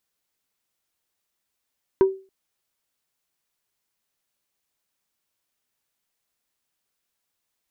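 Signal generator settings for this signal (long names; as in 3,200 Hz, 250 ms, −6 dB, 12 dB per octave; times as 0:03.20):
struck wood plate, length 0.28 s, lowest mode 384 Hz, decay 0.33 s, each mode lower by 12 dB, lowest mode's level −9.5 dB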